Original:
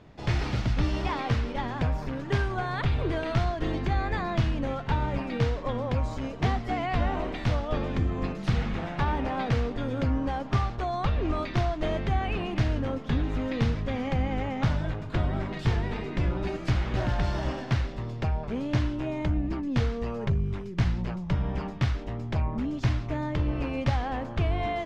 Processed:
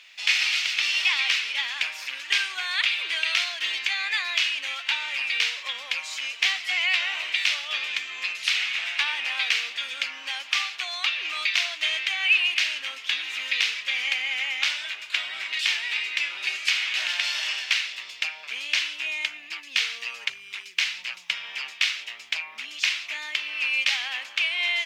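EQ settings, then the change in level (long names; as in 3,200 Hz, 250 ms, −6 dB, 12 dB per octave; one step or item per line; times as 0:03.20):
high-pass with resonance 2,500 Hz, resonance Q 3
high-shelf EQ 3,500 Hz +11 dB
+7.0 dB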